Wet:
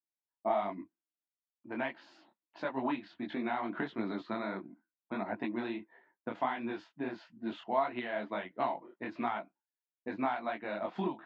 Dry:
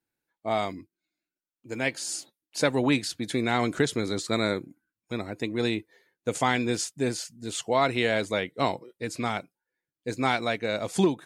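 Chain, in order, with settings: gate with hold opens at -55 dBFS; tilt +2.5 dB/oct; compressor 10:1, threshold -33 dBFS, peak gain reduction 15 dB; low-pass opened by the level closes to 1300 Hz, open at -27.5 dBFS; speaker cabinet 170–2600 Hz, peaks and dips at 210 Hz +8 dB, 320 Hz +6 dB, 470 Hz -10 dB, 670 Hz +7 dB, 960 Hz +8 dB, 2300 Hz -7 dB; detuned doubles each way 52 cents; gain +5 dB

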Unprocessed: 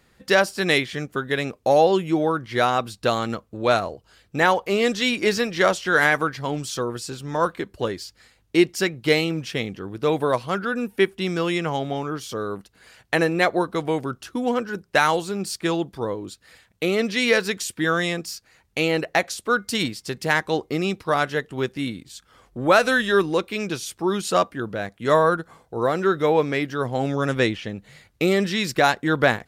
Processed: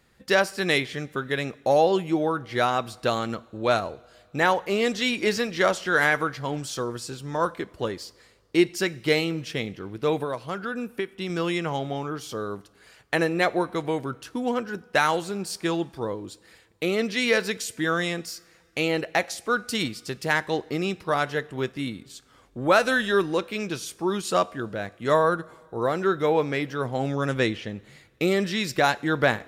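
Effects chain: 10.21–11.3 compressor 6:1, threshold -23 dBFS, peak gain reduction 10 dB; two-slope reverb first 0.56 s, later 2.6 s, from -16 dB, DRR 17.5 dB; gain -3 dB

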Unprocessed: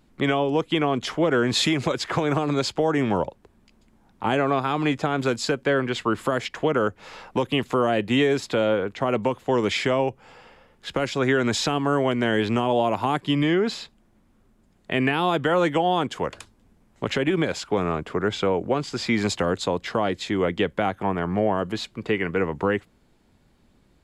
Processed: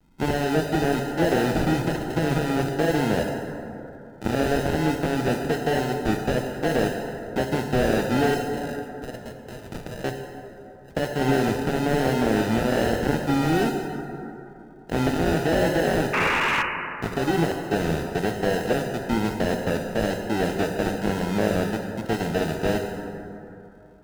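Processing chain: Wiener smoothing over 41 samples; 8.34–10.04 passive tone stack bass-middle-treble 10-0-10; sample-and-hold 39×; 16.13–16.63 painted sound noise 820–2900 Hz -22 dBFS; vibrato 1.1 Hz 57 cents; plate-style reverb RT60 3 s, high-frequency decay 0.4×, DRR 4 dB; slew limiter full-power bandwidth 190 Hz

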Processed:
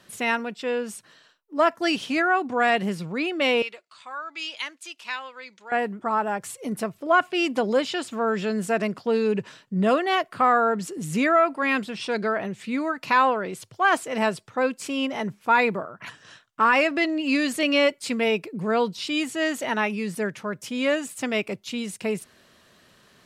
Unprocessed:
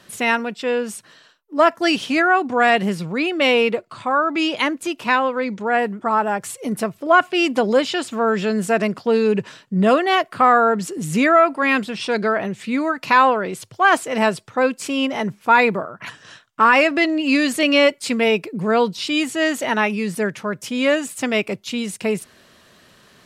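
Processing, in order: 3.62–5.72 band-pass 5100 Hz, Q 0.71; gain -5.5 dB

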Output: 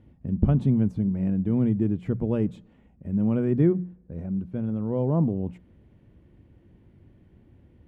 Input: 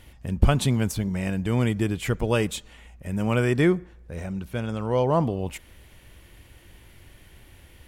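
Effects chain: band-pass 210 Hz, Q 1.2; low shelf 180 Hz +5 dB; notches 60/120/180 Hz; gain +2 dB

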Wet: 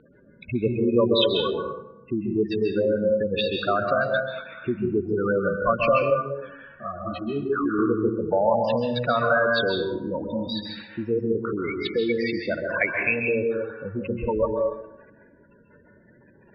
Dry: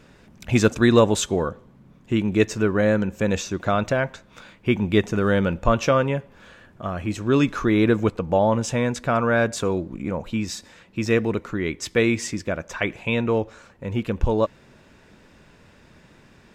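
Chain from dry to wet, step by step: spectral gate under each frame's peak -10 dB strong; Chebyshev low-pass 4500 Hz, order 8; low-pass opened by the level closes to 2200 Hz, open at -17.5 dBFS; tilt +4 dB/oct; compressor 1.5:1, threshold -33 dBFS, peak gain reduction 6 dB; plate-style reverb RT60 0.9 s, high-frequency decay 0.55×, pre-delay 0.12 s, DRR 1 dB; 6.1–7.79 ensemble effect; gain +6 dB

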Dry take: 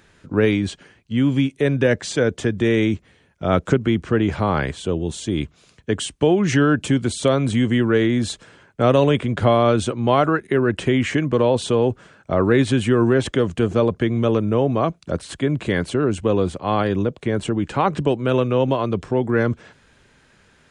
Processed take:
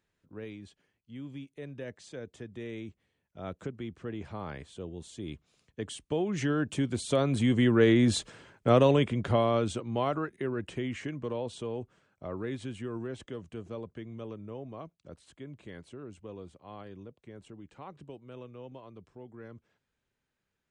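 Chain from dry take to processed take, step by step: Doppler pass-by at 8.19, 6 m/s, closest 3.7 m; bell 1500 Hz -3 dB 0.37 oct; gain -3 dB

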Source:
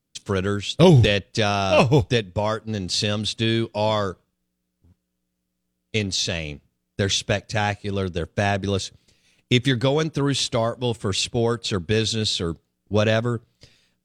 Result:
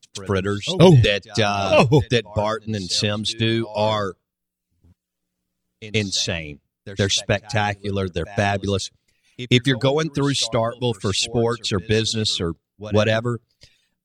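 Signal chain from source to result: pre-echo 0.125 s -16 dB; reverb removal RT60 0.69 s; gain +2.5 dB

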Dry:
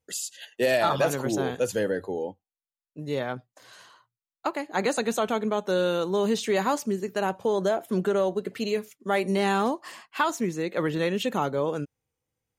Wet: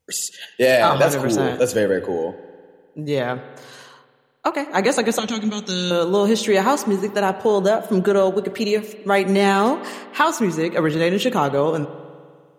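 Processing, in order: 5.19–5.91 EQ curve 230 Hz 0 dB, 610 Hz -20 dB, 6000 Hz +12 dB, 11000 Hz -13 dB; reverb RT60 1.9 s, pre-delay 50 ms, DRR 13 dB; gain +7.5 dB

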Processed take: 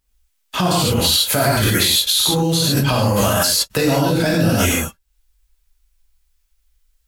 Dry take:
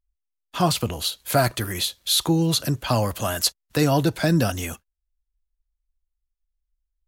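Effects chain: non-linear reverb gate 0.17 s flat, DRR -6.5 dB; in parallel at +2 dB: negative-ratio compressor -21 dBFS, ratio -0.5; on the sum: mismatched tape noise reduction encoder only; gain -4 dB

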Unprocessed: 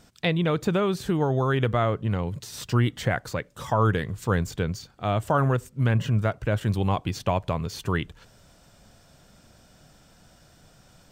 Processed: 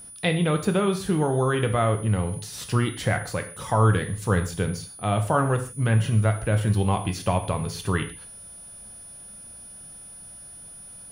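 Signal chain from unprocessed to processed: non-linear reverb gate 0.18 s falling, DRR 5.5 dB; whine 9900 Hz -41 dBFS

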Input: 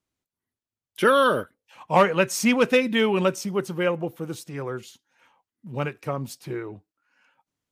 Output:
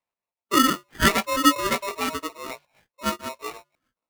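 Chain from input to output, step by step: high shelf 4500 Hz -11 dB; de-hum 214.4 Hz, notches 3; chorus 0.42 Hz, delay 17 ms, depth 3.8 ms; granular stretch 0.53×, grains 0.193 s; LFO low-pass square 1.2 Hz 570–1700 Hz; polarity switched at an audio rate 790 Hz

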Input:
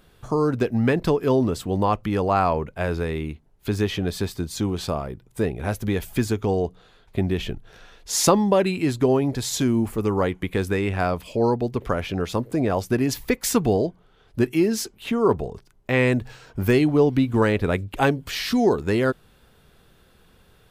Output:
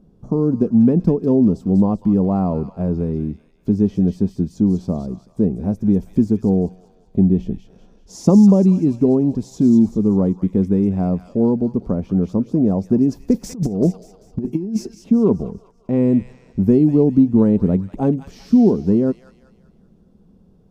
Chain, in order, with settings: EQ curve 130 Hz 0 dB, 190 Hz +13 dB, 350 Hz +2 dB, 590 Hz -3 dB, 1000 Hz -10 dB, 1700 Hz -24 dB, 3900 Hz -23 dB, 5600 Hz -13 dB, 11000 Hz -24 dB; thin delay 0.194 s, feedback 44%, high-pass 1900 Hz, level -4 dB; 13.34–14.95 negative-ratio compressor -19 dBFS, ratio -0.5; gain +1 dB

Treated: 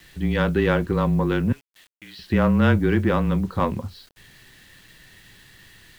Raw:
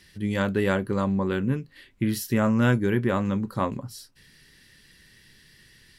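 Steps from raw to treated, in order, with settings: steep low-pass 4300 Hz 48 dB/oct; 1.52–2.19 differentiator; in parallel at -6.5 dB: soft clip -26 dBFS, distortion -8 dB; on the sum: frequency shift -25 Hz; bit-crush 9-bit; gain +2 dB

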